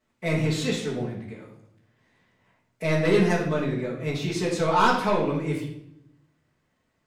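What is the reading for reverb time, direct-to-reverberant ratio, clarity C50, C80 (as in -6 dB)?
0.75 s, -7.0 dB, 4.5 dB, 8.5 dB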